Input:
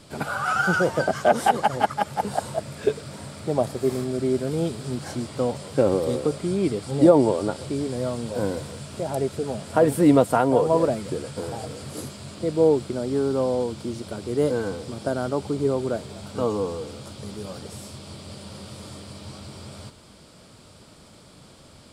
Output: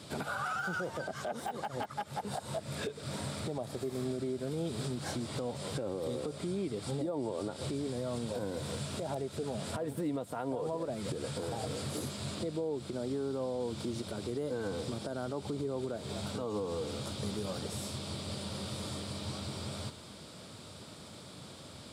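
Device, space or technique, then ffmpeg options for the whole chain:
broadcast voice chain: -af "highpass=frequency=71:width=0.5412,highpass=frequency=71:width=1.3066,deesser=0.7,acompressor=threshold=-28dB:ratio=4,equalizer=frequency=3700:width_type=o:width=0.2:gain=6,alimiter=level_in=3dB:limit=-24dB:level=0:latency=1:release=172,volume=-3dB"

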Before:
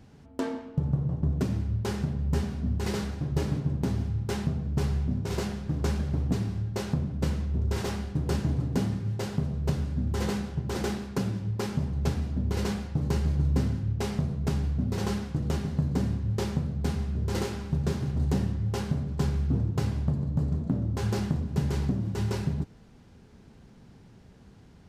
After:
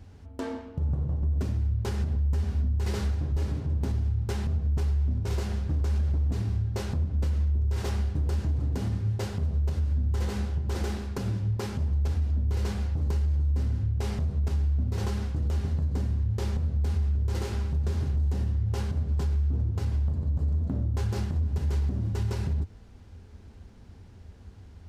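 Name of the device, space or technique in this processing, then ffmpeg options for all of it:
car stereo with a boomy subwoofer: -af "lowshelf=frequency=110:width_type=q:width=3:gain=6.5,alimiter=limit=-20.5dB:level=0:latency=1:release=121"

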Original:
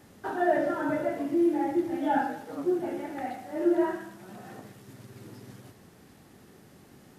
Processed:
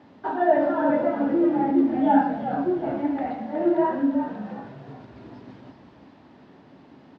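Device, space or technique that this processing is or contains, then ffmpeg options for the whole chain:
frequency-shifting delay pedal into a guitar cabinet: -filter_complex "[0:a]asplit=6[link_01][link_02][link_03][link_04][link_05][link_06];[link_02]adelay=366,afreqshift=-69,volume=-7dB[link_07];[link_03]adelay=732,afreqshift=-138,volume=-13.9dB[link_08];[link_04]adelay=1098,afreqshift=-207,volume=-20.9dB[link_09];[link_05]adelay=1464,afreqshift=-276,volume=-27.8dB[link_10];[link_06]adelay=1830,afreqshift=-345,volume=-34.7dB[link_11];[link_01][link_07][link_08][link_09][link_10][link_11]amix=inputs=6:normalize=0,highpass=100,equalizer=frequency=270:width_type=q:width=4:gain=9,equalizer=frequency=630:width_type=q:width=4:gain=6,equalizer=frequency=940:width_type=q:width=4:gain=9,lowpass=frequency=4200:width=0.5412,lowpass=frequency=4200:width=1.3066"

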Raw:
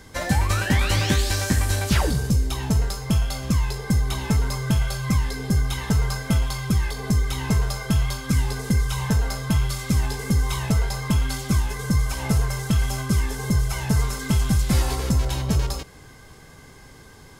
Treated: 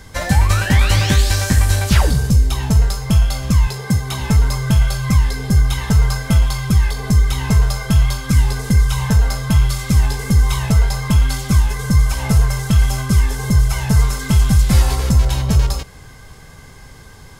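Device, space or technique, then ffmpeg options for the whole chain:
low shelf boost with a cut just above: -filter_complex "[0:a]lowshelf=frequency=100:gain=5.5,equalizer=frequency=320:width_type=o:width=0.97:gain=-5,asettb=1/sr,asplit=3[link_01][link_02][link_03];[link_01]atrim=end=3.674[link_04];[link_02]atrim=start=3.67:end=4.2,asetpts=PTS-STARTPTS,afade=type=in:duration=0.004:curve=qsin,afade=type=out:start_time=0.526:duration=0.004:curve=qsin,highpass=frequency=86:width=0.5412,highpass=frequency=86:width=1.3066[link_05];[link_03]atrim=start=4.196[link_06];[link_04][link_05]acrossfade=duration=0.004:curve1=hsin:curve2=qsin[link_07];[link_07][link_06]acrossfade=duration=0.004:curve1=qsin:curve2=hsin,volume=5dB"

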